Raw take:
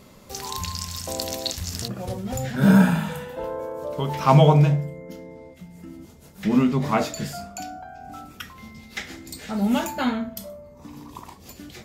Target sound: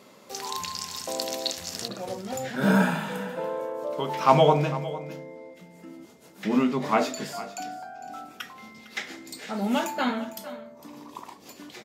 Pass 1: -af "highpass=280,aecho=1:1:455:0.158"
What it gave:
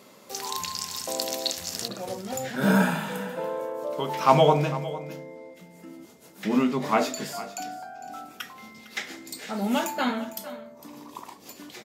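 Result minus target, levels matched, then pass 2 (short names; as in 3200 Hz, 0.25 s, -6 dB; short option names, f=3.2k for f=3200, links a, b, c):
8000 Hz band +2.5 dB
-af "highpass=280,highshelf=f=8.5k:g=-7,aecho=1:1:455:0.158"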